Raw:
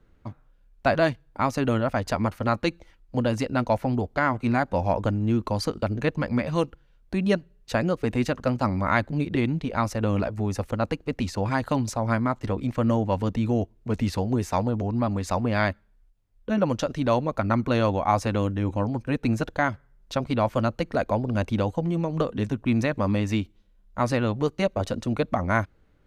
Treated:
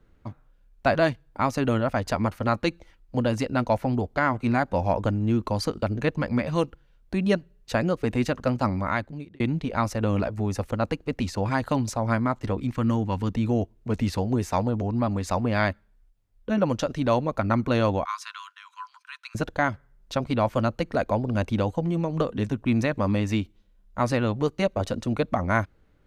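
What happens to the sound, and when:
8.67–9.40 s: fade out
12.61–13.35 s: peaking EQ 600 Hz -10 dB 0.66 oct
18.05–19.35 s: rippled Chebyshev high-pass 980 Hz, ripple 6 dB

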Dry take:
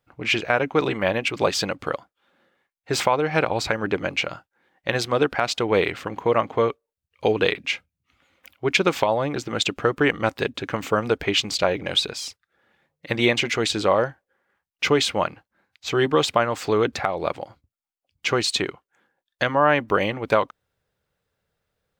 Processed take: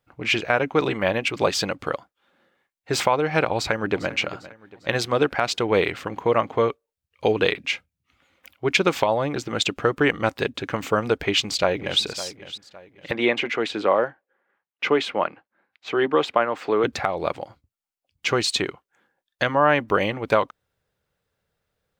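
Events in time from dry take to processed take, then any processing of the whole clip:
3.52–4.13 s: echo throw 400 ms, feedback 45%, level -16.5 dB
11.25–12.01 s: echo throw 560 ms, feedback 35%, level -15 dB
13.11–16.84 s: three-band isolator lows -18 dB, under 200 Hz, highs -16 dB, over 3.2 kHz

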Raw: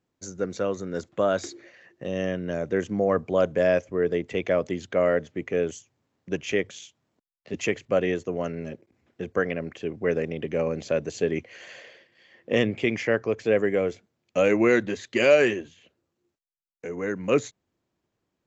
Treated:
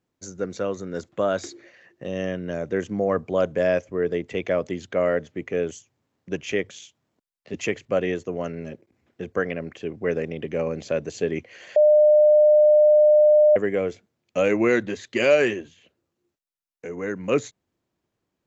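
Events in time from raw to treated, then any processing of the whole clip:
11.76–13.56 s: bleep 603 Hz -11.5 dBFS

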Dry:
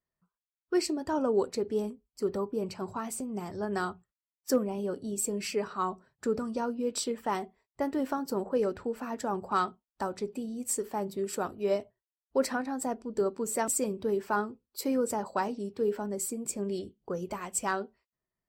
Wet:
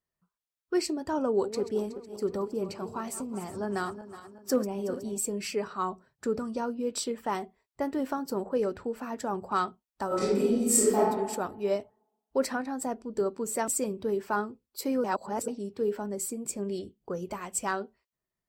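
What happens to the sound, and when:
1.24–5.18 s: backward echo that repeats 185 ms, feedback 64%, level -12 dB
10.07–10.97 s: reverb throw, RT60 1.2 s, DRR -11 dB
15.04–15.48 s: reverse

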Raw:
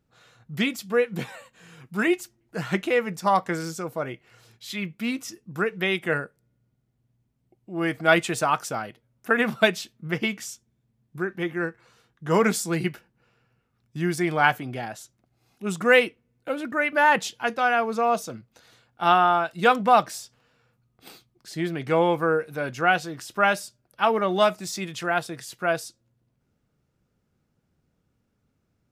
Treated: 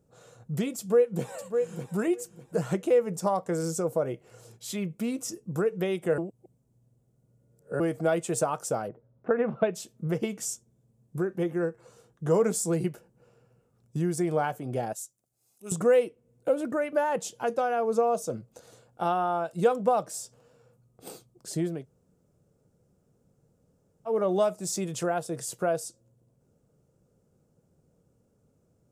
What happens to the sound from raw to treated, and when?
0.78–1.97 s: echo throw 600 ms, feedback 25%, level -13.5 dB
6.18–7.80 s: reverse
8.87–9.74 s: low-pass 1.5 kHz -> 3.1 kHz 24 dB/octave
14.93–15.72 s: pre-emphasis filter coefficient 0.9
21.75–24.17 s: room tone, crossfade 0.24 s
whole clip: peaking EQ 170 Hz +3 dB 0.4 oct; compression 2.5:1, threshold -32 dBFS; ten-band graphic EQ 125 Hz +4 dB, 500 Hz +11 dB, 2 kHz -8 dB, 4 kHz -6 dB, 8 kHz +9 dB

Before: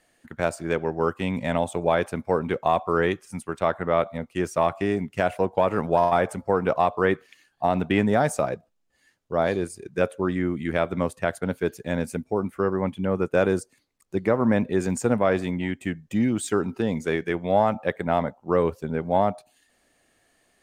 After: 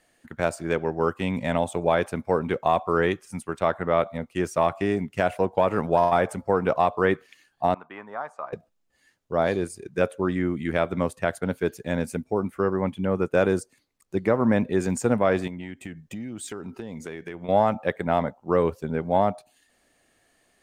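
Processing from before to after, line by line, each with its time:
7.74–8.53 s: band-pass filter 1.1 kHz, Q 3.9
15.47–17.49 s: compression, threshold -32 dBFS

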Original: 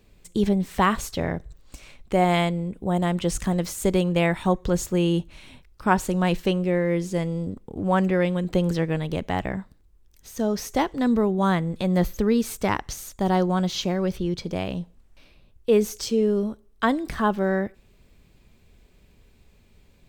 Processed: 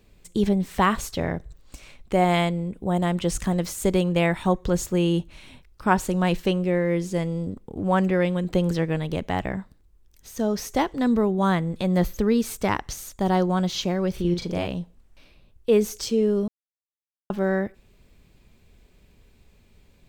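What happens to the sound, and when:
14.12–14.67 s: doubling 40 ms -4 dB
16.48–17.30 s: mute

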